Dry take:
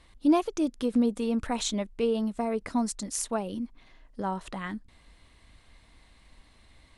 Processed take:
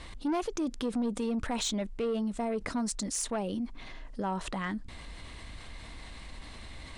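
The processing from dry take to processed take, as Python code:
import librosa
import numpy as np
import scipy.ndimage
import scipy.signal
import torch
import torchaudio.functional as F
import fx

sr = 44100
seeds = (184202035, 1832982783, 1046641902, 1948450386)

y = scipy.signal.sosfilt(scipy.signal.butter(4, 9700.0, 'lowpass', fs=sr, output='sos'), x)
y = 10.0 ** (-22.5 / 20.0) * np.tanh(y / 10.0 ** (-22.5 / 20.0))
y = fx.env_flatten(y, sr, amount_pct=50)
y = y * 10.0 ** (-4.0 / 20.0)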